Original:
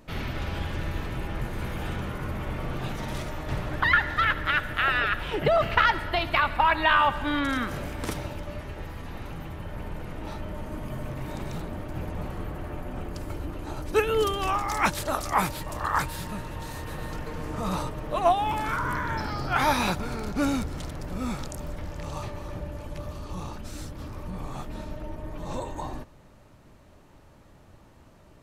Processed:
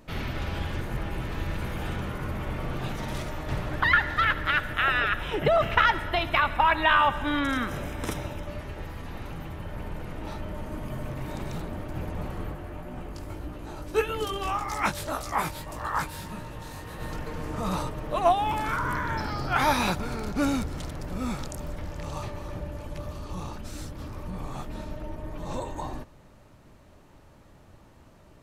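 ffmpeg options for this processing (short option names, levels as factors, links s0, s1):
-filter_complex "[0:a]asettb=1/sr,asplit=3[s0][s1][s2];[s0]atrim=end=4.744[s3];[s1]atrim=start=4.74:end=8.48,asetpts=PTS-STARTPTS,afade=t=in:d=0.004:c=qsin,afade=t=out:st=3.736:d=0.004:c=qsin,asuperstop=centerf=4500:order=4:qfactor=7.4[s4];[s2]atrim=start=8.476[s5];[s3][s4]acrossfade=d=0.004:c1=hsin:c2=qsin[s6];[s6][s5]acrossfade=d=0.004:c1=qsin:c2=hsin,asplit=3[s7][s8][s9];[s7]afade=t=out:st=12.53:d=0.02[s10];[s8]flanger=delay=16.5:depth=4:speed=1.7,afade=t=in:st=12.53:d=0.02,afade=t=out:st=16.99:d=0.02[s11];[s9]afade=t=in:st=16.99:d=0.02[s12];[s10][s11][s12]amix=inputs=3:normalize=0,asplit=3[s13][s14][s15];[s13]atrim=end=0.812[s16];[s14]atrim=start=0.808:end=1.572,asetpts=PTS-STARTPTS,areverse[s17];[s15]atrim=start=1.568[s18];[s16][s17]acrossfade=d=0.004:c1=hsin:c2=hsin[s19];[s19][s18]acrossfade=d=0.004:c1=hsin:c2=hsin"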